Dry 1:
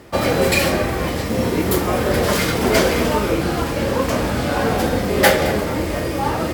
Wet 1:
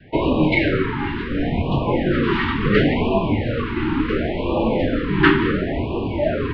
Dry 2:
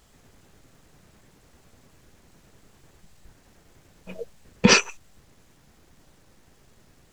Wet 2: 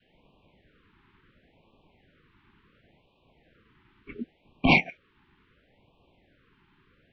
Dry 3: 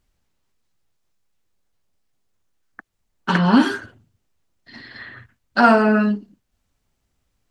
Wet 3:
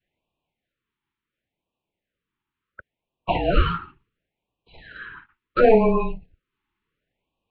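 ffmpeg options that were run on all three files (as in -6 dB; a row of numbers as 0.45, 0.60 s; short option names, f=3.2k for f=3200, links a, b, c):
-af "highpass=f=260:t=q:w=0.5412,highpass=f=260:t=q:w=1.307,lowpass=f=3.5k:t=q:w=0.5176,lowpass=f=3.5k:t=q:w=0.7071,lowpass=f=3.5k:t=q:w=1.932,afreqshift=-230,adynamicequalizer=threshold=0.0316:dfrequency=550:dqfactor=0.94:tfrequency=550:tqfactor=0.94:attack=5:release=100:ratio=0.375:range=1.5:mode=boostabove:tftype=bell,afftfilt=real='re*(1-between(b*sr/1024,560*pow(1700/560,0.5+0.5*sin(2*PI*0.71*pts/sr))/1.41,560*pow(1700/560,0.5+0.5*sin(2*PI*0.71*pts/sr))*1.41))':imag='im*(1-between(b*sr/1024,560*pow(1700/560,0.5+0.5*sin(2*PI*0.71*pts/sr))/1.41,560*pow(1700/560,0.5+0.5*sin(2*PI*0.71*pts/sr))*1.41))':win_size=1024:overlap=0.75"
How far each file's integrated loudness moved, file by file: -1.5, -7.0, -3.5 LU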